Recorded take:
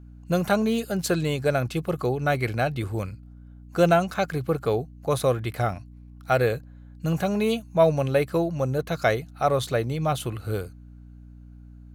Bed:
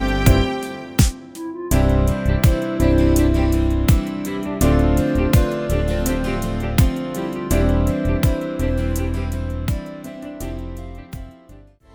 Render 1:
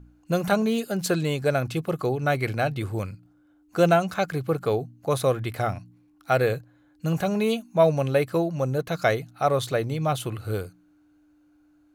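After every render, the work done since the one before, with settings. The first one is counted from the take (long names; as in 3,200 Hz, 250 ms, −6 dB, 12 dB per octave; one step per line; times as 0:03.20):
hum removal 60 Hz, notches 4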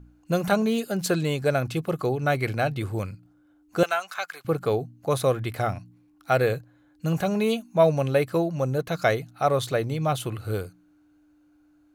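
0:03.83–0:04.45: Chebyshev high-pass filter 1,200 Hz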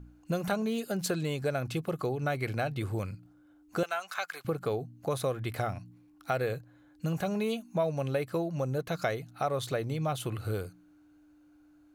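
downward compressor 2.5 to 1, threshold −31 dBFS, peak gain reduction 12 dB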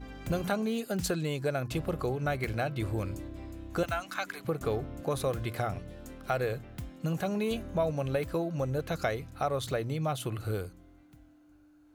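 mix in bed −26 dB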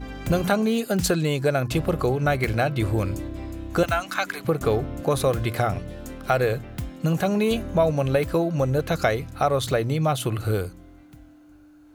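level +9 dB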